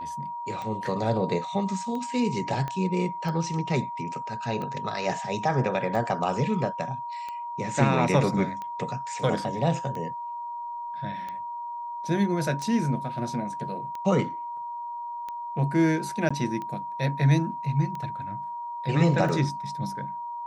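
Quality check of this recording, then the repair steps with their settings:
tick 45 rpm -23 dBFS
whine 950 Hz -32 dBFS
2.68 s: pop -19 dBFS
16.29–16.30 s: dropout 15 ms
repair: de-click; band-stop 950 Hz, Q 30; interpolate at 16.29 s, 15 ms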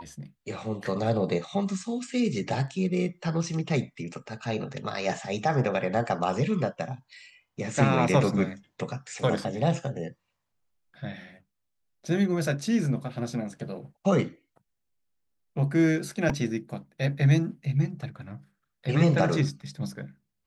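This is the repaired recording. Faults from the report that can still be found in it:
2.68 s: pop

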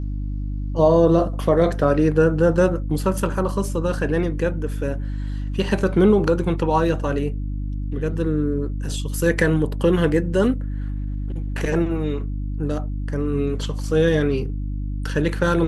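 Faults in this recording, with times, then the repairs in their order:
hum 50 Hz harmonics 6 -26 dBFS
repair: de-hum 50 Hz, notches 6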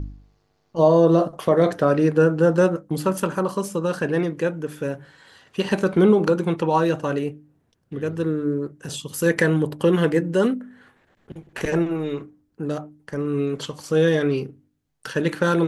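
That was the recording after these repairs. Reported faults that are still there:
nothing left

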